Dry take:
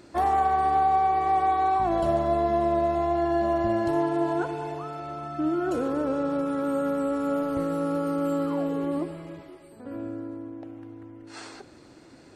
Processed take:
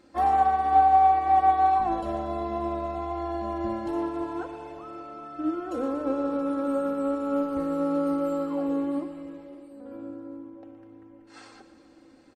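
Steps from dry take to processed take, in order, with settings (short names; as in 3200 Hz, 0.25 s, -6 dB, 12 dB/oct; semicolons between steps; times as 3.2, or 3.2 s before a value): high shelf 4700 Hz -5 dB; notches 50/100/150/200/250/300 Hz; comb 3.8 ms, depth 61%; on a send: split-band echo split 680 Hz, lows 0.56 s, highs 0.118 s, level -13 dB; on the sum: upward expander 1.5:1, over -29 dBFS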